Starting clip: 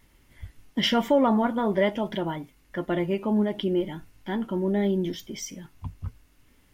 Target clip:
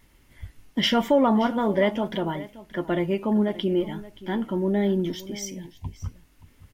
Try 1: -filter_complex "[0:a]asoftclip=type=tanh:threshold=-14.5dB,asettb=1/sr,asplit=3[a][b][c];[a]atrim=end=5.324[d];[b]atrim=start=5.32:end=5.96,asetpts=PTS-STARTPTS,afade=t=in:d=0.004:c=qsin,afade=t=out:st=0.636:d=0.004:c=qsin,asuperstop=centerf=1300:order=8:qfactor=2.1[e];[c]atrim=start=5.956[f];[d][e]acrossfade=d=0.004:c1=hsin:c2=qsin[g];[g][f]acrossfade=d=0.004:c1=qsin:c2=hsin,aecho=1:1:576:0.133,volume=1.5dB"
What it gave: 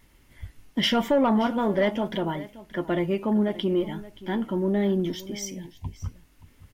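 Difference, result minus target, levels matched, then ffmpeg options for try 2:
soft clip: distortion +19 dB
-filter_complex "[0:a]asoftclip=type=tanh:threshold=-3.5dB,asettb=1/sr,asplit=3[a][b][c];[a]atrim=end=5.324[d];[b]atrim=start=5.32:end=5.96,asetpts=PTS-STARTPTS,afade=t=in:d=0.004:c=qsin,afade=t=out:st=0.636:d=0.004:c=qsin,asuperstop=centerf=1300:order=8:qfactor=2.1[e];[c]atrim=start=5.956[f];[d][e]acrossfade=d=0.004:c1=hsin:c2=qsin[g];[g][f]acrossfade=d=0.004:c1=qsin:c2=hsin,aecho=1:1:576:0.133,volume=1.5dB"

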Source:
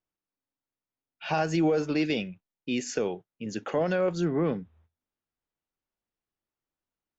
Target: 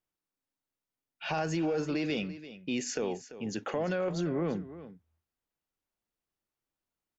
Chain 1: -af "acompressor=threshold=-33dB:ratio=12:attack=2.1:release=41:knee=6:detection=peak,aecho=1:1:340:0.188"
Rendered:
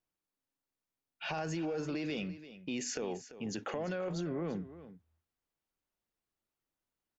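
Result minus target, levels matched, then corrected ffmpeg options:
compressor: peak gain reduction +6 dB
-af "acompressor=threshold=-26.5dB:ratio=12:attack=2.1:release=41:knee=6:detection=peak,aecho=1:1:340:0.188"

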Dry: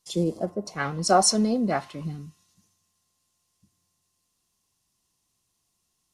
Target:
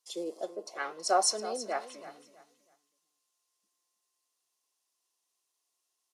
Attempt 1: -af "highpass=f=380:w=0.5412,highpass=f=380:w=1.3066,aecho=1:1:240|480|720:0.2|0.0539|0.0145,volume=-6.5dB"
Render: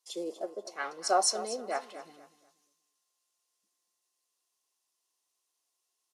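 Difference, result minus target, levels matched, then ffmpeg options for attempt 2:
echo 84 ms early
-af "highpass=f=380:w=0.5412,highpass=f=380:w=1.3066,aecho=1:1:324|648|972:0.2|0.0539|0.0145,volume=-6.5dB"

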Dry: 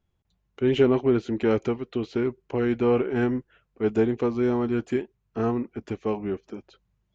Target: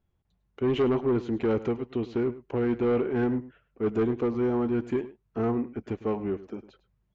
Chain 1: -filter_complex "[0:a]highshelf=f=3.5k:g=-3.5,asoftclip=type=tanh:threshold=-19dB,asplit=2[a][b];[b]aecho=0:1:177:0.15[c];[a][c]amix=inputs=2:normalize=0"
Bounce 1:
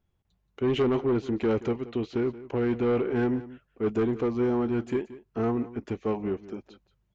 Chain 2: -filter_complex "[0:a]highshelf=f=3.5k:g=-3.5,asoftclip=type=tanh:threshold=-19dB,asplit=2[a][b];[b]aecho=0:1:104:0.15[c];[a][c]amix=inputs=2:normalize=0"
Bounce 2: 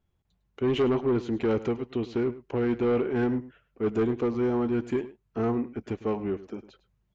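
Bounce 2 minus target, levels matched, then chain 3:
8000 Hz band +5.5 dB
-filter_complex "[0:a]highshelf=f=3.5k:g=-10.5,asoftclip=type=tanh:threshold=-19dB,asplit=2[a][b];[b]aecho=0:1:104:0.15[c];[a][c]amix=inputs=2:normalize=0"

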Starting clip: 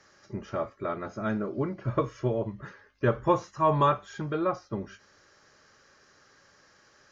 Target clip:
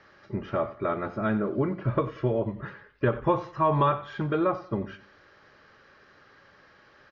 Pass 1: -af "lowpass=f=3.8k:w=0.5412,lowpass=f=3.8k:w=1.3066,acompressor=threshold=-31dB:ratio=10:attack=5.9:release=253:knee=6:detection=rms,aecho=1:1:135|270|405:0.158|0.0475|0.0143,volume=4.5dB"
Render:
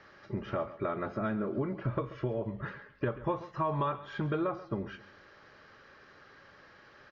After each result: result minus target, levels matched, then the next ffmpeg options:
echo 43 ms late; compressor: peak gain reduction +9 dB
-af "lowpass=f=3.8k:w=0.5412,lowpass=f=3.8k:w=1.3066,acompressor=threshold=-31dB:ratio=10:attack=5.9:release=253:knee=6:detection=rms,aecho=1:1:92|184|276:0.158|0.0475|0.0143,volume=4.5dB"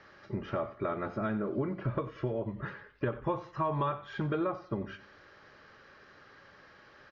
compressor: peak gain reduction +9 dB
-af "lowpass=f=3.8k:w=0.5412,lowpass=f=3.8k:w=1.3066,acompressor=threshold=-21dB:ratio=10:attack=5.9:release=253:knee=6:detection=rms,aecho=1:1:92|184|276:0.158|0.0475|0.0143,volume=4.5dB"

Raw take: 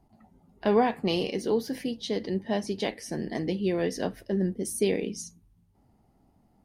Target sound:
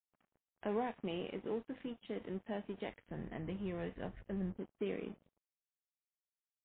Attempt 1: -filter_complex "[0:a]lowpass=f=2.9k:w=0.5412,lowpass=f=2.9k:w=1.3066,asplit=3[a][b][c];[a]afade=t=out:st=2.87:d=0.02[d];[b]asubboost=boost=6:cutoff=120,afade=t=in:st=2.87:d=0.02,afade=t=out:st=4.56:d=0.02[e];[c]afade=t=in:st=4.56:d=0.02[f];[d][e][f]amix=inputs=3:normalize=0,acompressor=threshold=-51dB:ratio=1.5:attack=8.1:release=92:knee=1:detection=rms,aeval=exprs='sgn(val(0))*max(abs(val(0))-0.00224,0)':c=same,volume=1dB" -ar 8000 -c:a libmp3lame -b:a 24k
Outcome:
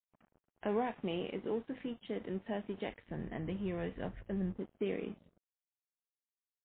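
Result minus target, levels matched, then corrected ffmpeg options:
compressor: peak gain reduction -2.5 dB
-filter_complex "[0:a]lowpass=f=2.9k:w=0.5412,lowpass=f=2.9k:w=1.3066,asplit=3[a][b][c];[a]afade=t=out:st=2.87:d=0.02[d];[b]asubboost=boost=6:cutoff=120,afade=t=in:st=2.87:d=0.02,afade=t=out:st=4.56:d=0.02[e];[c]afade=t=in:st=4.56:d=0.02[f];[d][e][f]amix=inputs=3:normalize=0,acompressor=threshold=-59dB:ratio=1.5:attack=8.1:release=92:knee=1:detection=rms,aeval=exprs='sgn(val(0))*max(abs(val(0))-0.00224,0)':c=same,volume=1dB" -ar 8000 -c:a libmp3lame -b:a 24k

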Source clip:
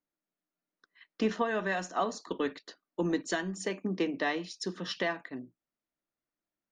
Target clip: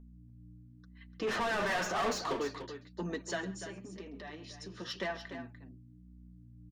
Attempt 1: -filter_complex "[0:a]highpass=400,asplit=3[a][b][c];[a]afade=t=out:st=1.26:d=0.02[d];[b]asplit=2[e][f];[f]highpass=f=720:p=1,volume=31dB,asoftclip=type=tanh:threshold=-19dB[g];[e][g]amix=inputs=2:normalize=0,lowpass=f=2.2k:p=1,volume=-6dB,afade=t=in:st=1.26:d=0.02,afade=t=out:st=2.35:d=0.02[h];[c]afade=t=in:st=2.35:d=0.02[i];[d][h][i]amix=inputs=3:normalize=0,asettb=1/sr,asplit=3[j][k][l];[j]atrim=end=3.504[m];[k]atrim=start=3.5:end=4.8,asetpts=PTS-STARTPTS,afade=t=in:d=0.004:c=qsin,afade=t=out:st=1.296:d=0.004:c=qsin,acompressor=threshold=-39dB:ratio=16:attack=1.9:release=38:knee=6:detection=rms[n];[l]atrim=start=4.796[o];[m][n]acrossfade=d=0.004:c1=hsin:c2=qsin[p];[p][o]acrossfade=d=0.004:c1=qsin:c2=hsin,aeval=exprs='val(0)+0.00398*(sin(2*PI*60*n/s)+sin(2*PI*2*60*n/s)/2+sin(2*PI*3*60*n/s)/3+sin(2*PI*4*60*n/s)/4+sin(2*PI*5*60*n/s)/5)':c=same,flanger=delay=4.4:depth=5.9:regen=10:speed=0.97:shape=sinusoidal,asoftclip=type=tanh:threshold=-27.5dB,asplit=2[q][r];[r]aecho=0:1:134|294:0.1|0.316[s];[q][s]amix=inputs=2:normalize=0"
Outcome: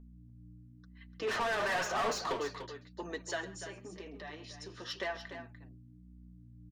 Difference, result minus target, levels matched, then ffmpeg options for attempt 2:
125 Hz band -2.5 dB
-filter_complex "[0:a]highpass=110,asplit=3[a][b][c];[a]afade=t=out:st=1.26:d=0.02[d];[b]asplit=2[e][f];[f]highpass=f=720:p=1,volume=31dB,asoftclip=type=tanh:threshold=-19dB[g];[e][g]amix=inputs=2:normalize=0,lowpass=f=2.2k:p=1,volume=-6dB,afade=t=in:st=1.26:d=0.02,afade=t=out:st=2.35:d=0.02[h];[c]afade=t=in:st=2.35:d=0.02[i];[d][h][i]amix=inputs=3:normalize=0,asettb=1/sr,asplit=3[j][k][l];[j]atrim=end=3.504[m];[k]atrim=start=3.5:end=4.8,asetpts=PTS-STARTPTS,afade=t=in:d=0.004:c=qsin,afade=t=out:st=1.296:d=0.004:c=qsin,acompressor=threshold=-39dB:ratio=16:attack=1.9:release=38:knee=6:detection=rms[n];[l]atrim=start=4.796[o];[m][n]acrossfade=d=0.004:c1=hsin:c2=qsin[p];[p][o]acrossfade=d=0.004:c1=qsin:c2=hsin,aeval=exprs='val(0)+0.00398*(sin(2*PI*60*n/s)+sin(2*PI*2*60*n/s)/2+sin(2*PI*3*60*n/s)/3+sin(2*PI*4*60*n/s)/4+sin(2*PI*5*60*n/s)/5)':c=same,flanger=delay=4.4:depth=5.9:regen=10:speed=0.97:shape=sinusoidal,asoftclip=type=tanh:threshold=-27.5dB,asplit=2[q][r];[r]aecho=0:1:134|294:0.1|0.316[s];[q][s]amix=inputs=2:normalize=0"

